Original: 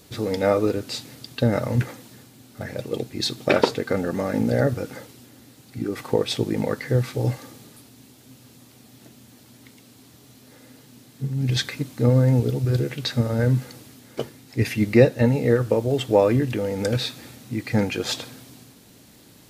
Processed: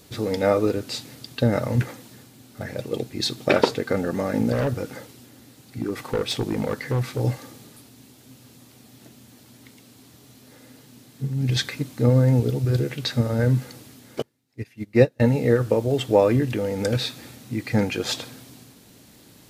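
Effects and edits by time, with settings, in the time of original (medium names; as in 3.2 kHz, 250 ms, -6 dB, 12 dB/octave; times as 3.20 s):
4.52–7.20 s: overload inside the chain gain 19 dB
14.22–15.20 s: upward expansion 2.5:1, over -27 dBFS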